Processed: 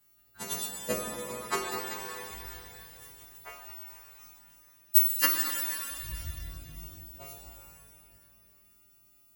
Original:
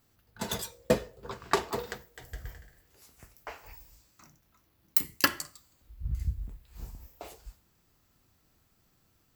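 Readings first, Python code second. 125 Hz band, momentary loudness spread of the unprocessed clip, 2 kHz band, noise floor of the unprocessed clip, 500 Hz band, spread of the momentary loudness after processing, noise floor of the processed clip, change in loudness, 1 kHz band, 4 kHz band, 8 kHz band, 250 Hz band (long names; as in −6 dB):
−6.5 dB, 20 LU, −0.5 dB, −70 dBFS, −4.5 dB, 24 LU, −62 dBFS, +3.5 dB, −2.0 dB, 0.0 dB, +5.5 dB, −5.5 dB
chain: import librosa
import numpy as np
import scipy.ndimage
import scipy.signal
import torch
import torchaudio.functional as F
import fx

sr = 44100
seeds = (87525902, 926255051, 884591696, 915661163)

y = fx.freq_snap(x, sr, grid_st=2)
y = fx.peak_eq(y, sr, hz=5100.0, db=-6.0, octaves=0.52)
y = fx.rev_shimmer(y, sr, seeds[0], rt60_s=2.9, semitones=12, shimmer_db=-8, drr_db=0.5)
y = y * librosa.db_to_amplitude(-6.5)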